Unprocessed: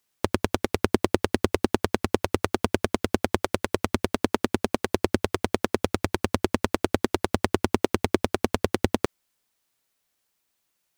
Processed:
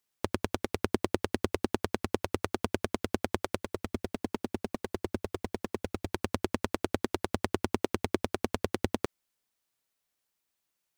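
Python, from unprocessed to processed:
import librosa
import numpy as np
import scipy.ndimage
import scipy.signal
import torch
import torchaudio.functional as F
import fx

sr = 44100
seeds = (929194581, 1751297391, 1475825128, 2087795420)

y = fx.clip_hard(x, sr, threshold_db=-14.0, at=(3.61, 6.07))
y = y * librosa.db_to_amplitude(-7.0)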